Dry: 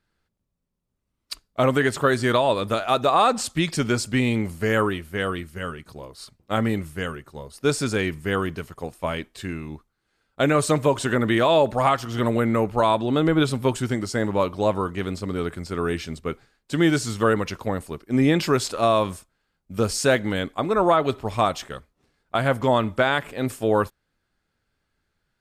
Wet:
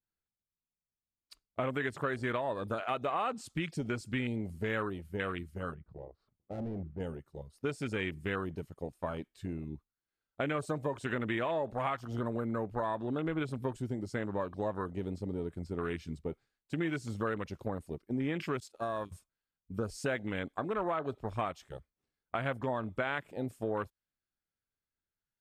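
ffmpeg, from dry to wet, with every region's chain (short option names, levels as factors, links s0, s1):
-filter_complex "[0:a]asettb=1/sr,asplit=3[s0][s1][s2];[s0]atrim=end=5.744[s3];[s1]atrim=start=5.74:end=7,asetpts=PTS-STARTPTS,afade=t=in:d=0.004:c=qsin,afade=t=out:st=1.256:d=0.004:c=qsin,lowpass=1200,asoftclip=type=hard:threshold=0.0355[s4];[s2]atrim=start=6.996[s5];[s3][s4]acrossfade=d=0.004:c1=hsin:c2=qsin[s6];[s6][s5]acrossfade=d=0.004:c1=qsin:c2=hsin,asettb=1/sr,asplit=3[s7][s8][s9];[s7]atrim=end=18.604[s10];[s8]atrim=start=18.6:end=19.12,asetpts=PTS-STARTPTS,afade=t=in:d=0.004:c=qsin,afade=t=out:st=0.516:d=0.004:c=qsin,highshelf=f=3800:g=8,agate=range=0.0224:threshold=0.112:ratio=3:release=100:detection=peak,acompressor=threshold=0.0631:ratio=2.5:attack=3.2:release=140:knee=1:detection=peak[s11];[s9]atrim=start=19.116[s12];[s10][s11]acrossfade=d=0.004:c1=hsin:c2=qsin[s13];[s13][s12]acrossfade=d=0.004:c1=qsin:c2=hsin,afwtdn=0.0355,acompressor=threshold=0.0398:ratio=3,adynamicequalizer=threshold=0.00891:dfrequency=1700:dqfactor=0.7:tfrequency=1700:tqfactor=0.7:attack=5:release=100:ratio=0.375:range=3:mode=boostabove:tftype=highshelf,volume=0.531"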